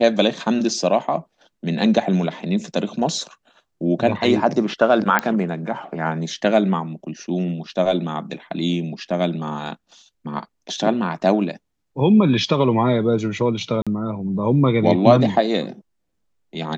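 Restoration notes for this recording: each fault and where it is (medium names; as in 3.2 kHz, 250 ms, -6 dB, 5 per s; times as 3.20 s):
5.19 s: pop -4 dBFS
13.82–13.87 s: dropout 46 ms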